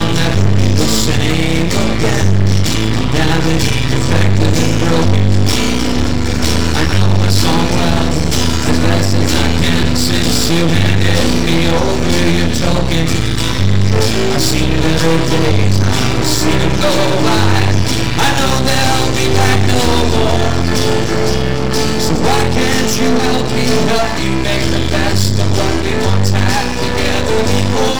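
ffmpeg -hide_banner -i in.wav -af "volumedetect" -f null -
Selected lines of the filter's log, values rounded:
mean_volume: -10.9 dB
max_volume: -2.4 dB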